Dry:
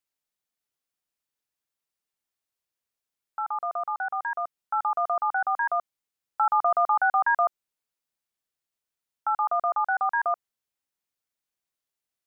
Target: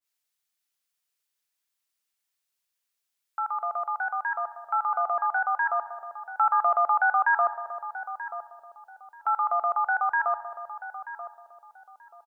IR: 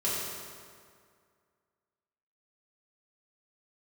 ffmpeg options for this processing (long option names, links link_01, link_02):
-filter_complex "[0:a]tiltshelf=frequency=970:gain=-6.5,asplit=2[link_01][link_02];[link_02]adelay=933,lowpass=frequency=800:poles=1,volume=-9dB,asplit=2[link_03][link_04];[link_04]adelay=933,lowpass=frequency=800:poles=1,volume=0.36,asplit=2[link_05][link_06];[link_06]adelay=933,lowpass=frequency=800:poles=1,volume=0.36,asplit=2[link_07][link_08];[link_08]adelay=933,lowpass=frequency=800:poles=1,volume=0.36[link_09];[link_01][link_03][link_05][link_07][link_09]amix=inputs=5:normalize=0,asplit=2[link_10][link_11];[1:a]atrim=start_sample=2205,asetrate=66150,aresample=44100,adelay=73[link_12];[link_11][link_12]afir=irnorm=-1:irlink=0,volume=-21dB[link_13];[link_10][link_13]amix=inputs=2:normalize=0,adynamicequalizer=threshold=0.0282:dfrequency=1700:dqfactor=0.7:tfrequency=1700:tqfactor=0.7:attack=5:release=100:ratio=0.375:range=2:mode=cutabove:tftype=highshelf"